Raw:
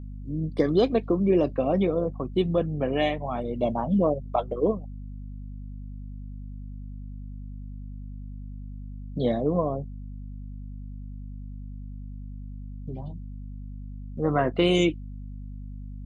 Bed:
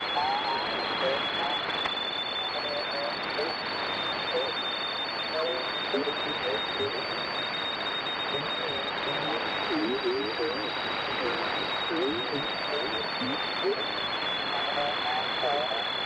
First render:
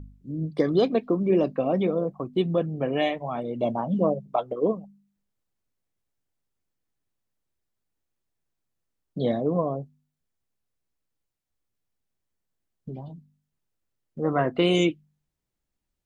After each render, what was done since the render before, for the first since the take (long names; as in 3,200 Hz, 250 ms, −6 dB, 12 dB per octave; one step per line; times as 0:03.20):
hum removal 50 Hz, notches 5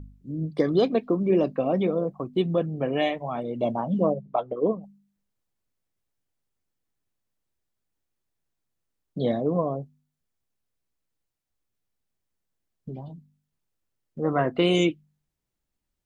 0:04.12–0:04.82: low-pass filter 2,100 Hz → 3,100 Hz 6 dB per octave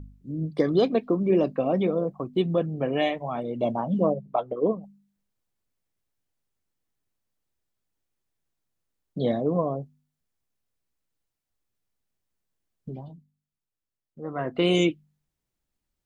0:12.94–0:14.70: duck −9.5 dB, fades 0.37 s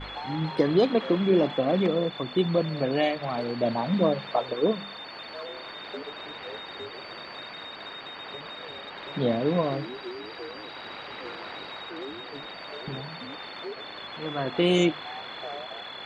mix in bed −9 dB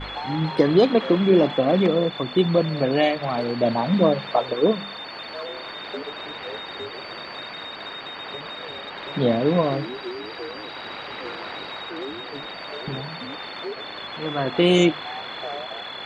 level +5 dB